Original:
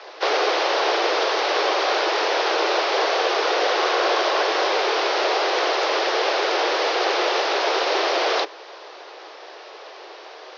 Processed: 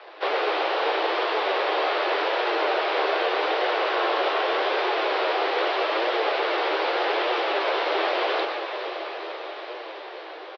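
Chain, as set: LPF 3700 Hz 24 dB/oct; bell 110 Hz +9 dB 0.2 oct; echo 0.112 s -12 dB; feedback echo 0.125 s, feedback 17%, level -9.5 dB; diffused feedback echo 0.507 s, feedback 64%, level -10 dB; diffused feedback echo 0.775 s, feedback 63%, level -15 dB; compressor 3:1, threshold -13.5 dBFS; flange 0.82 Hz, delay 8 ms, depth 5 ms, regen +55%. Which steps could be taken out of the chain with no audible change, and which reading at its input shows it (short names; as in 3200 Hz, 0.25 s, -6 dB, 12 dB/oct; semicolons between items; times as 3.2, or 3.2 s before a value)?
bell 110 Hz: input band starts at 270 Hz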